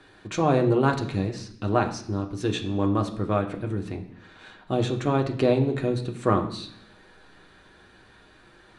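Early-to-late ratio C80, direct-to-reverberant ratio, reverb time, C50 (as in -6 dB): 14.0 dB, 2.5 dB, 0.70 s, 11.0 dB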